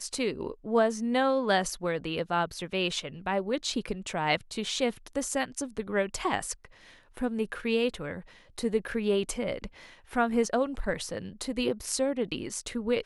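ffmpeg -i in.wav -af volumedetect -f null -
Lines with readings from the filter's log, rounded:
mean_volume: -30.4 dB
max_volume: -11.6 dB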